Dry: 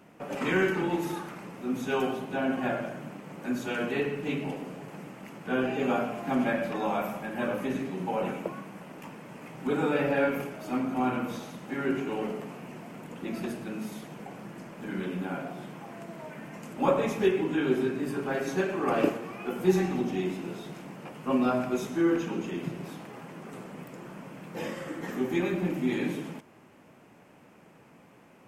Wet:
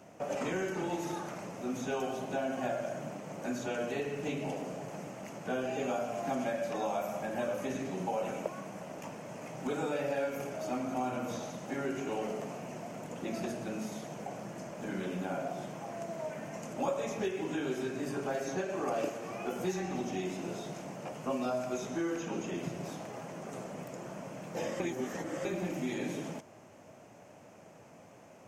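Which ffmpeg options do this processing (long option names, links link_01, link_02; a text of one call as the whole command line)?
ffmpeg -i in.wav -filter_complex "[0:a]asplit=3[link_01][link_02][link_03];[link_01]atrim=end=24.802[link_04];[link_02]atrim=start=24.798:end=25.452,asetpts=PTS-STARTPTS,areverse[link_05];[link_03]atrim=start=25.448[link_06];[link_04][link_05]acrossfade=duration=0.004:curve1=hsin:curve2=hsin[link_07];[link_07][link_06]acrossfade=duration=0.004:curve1=hsin:curve2=hsin,equalizer=frequency=100:width_type=o:width=0.67:gain=7,equalizer=frequency=630:width_type=o:width=0.67:gain=10,equalizer=frequency=6300:width_type=o:width=0.67:gain=12,acrossover=split=1100|3900[link_08][link_09][link_10];[link_08]acompressor=threshold=-30dB:ratio=4[link_11];[link_09]acompressor=threshold=-42dB:ratio=4[link_12];[link_10]acompressor=threshold=-48dB:ratio=4[link_13];[link_11][link_12][link_13]amix=inputs=3:normalize=0,volume=-3dB" out.wav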